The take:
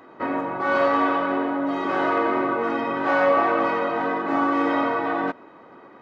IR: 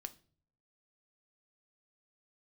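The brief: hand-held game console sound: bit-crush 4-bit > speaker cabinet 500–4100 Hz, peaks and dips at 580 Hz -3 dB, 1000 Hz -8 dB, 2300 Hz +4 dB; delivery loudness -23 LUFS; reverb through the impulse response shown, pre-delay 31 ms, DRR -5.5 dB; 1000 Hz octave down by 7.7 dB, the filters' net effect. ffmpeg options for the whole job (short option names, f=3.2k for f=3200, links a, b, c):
-filter_complex "[0:a]equalizer=f=1k:t=o:g=-5,asplit=2[a][b];[1:a]atrim=start_sample=2205,adelay=31[c];[b][c]afir=irnorm=-1:irlink=0,volume=9.5dB[d];[a][d]amix=inputs=2:normalize=0,acrusher=bits=3:mix=0:aa=0.000001,highpass=500,equalizer=f=580:t=q:w=4:g=-3,equalizer=f=1k:t=q:w=4:g=-8,equalizer=f=2.3k:t=q:w=4:g=4,lowpass=f=4.1k:w=0.5412,lowpass=f=4.1k:w=1.3066,volume=-2dB"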